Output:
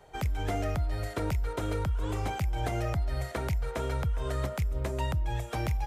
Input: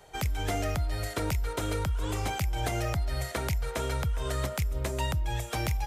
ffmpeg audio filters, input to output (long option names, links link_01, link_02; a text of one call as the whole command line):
ffmpeg -i in.wav -af "highshelf=frequency=2400:gain=-9" out.wav